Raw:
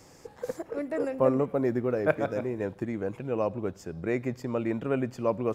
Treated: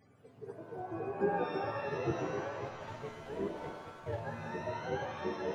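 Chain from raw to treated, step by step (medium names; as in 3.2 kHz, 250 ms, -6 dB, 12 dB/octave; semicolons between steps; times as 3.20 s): spectrum inverted on a logarithmic axis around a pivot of 460 Hz; 2.65–4.23 s: hysteresis with a dead band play -31.5 dBFS; pitch-shifted reverb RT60 1.2 s, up +7 st, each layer -2 dB, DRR 5 dB; trim -8.5 dB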